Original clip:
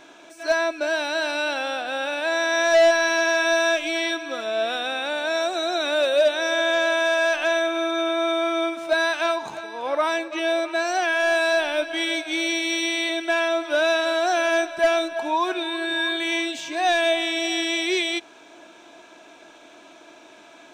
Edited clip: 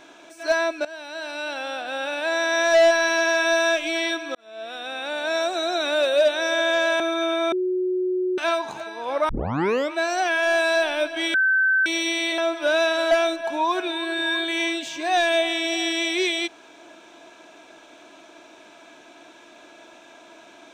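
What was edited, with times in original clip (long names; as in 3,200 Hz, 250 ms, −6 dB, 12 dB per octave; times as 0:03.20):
0:00.85–0:02.73: fade in equal-power, from −17 dB
0:04.35–0:05.34: fade in
0:07.00–0:07.77: remove
0:08.29–0:09.15: beep over 367 Hz −20.5 dBFS
0:10.06: tape start 0.63 s
0:12.11–0:12.63: beep over 1,540 Hz −16 dBFS
0:13.15–0:13.46: remove
0:14.19–0:14.83: remove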